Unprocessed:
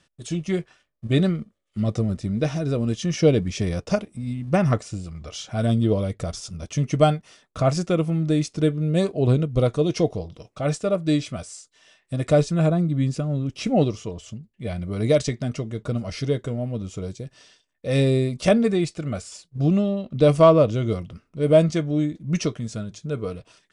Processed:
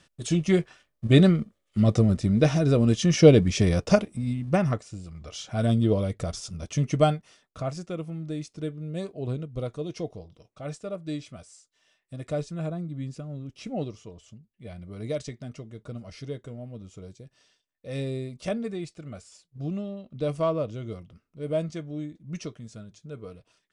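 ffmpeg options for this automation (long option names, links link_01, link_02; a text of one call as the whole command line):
ffmpeg -i in.wav -af "volume=10dB,afade=type=out:start_time=4.03:duration=0.8:silence=0.251189,afade=type=in:start_time=4.83:duration=0.77:silence=0.446684,afade=type=out:start_time=6.84:duration=0.88:silence=0.316228" out.wav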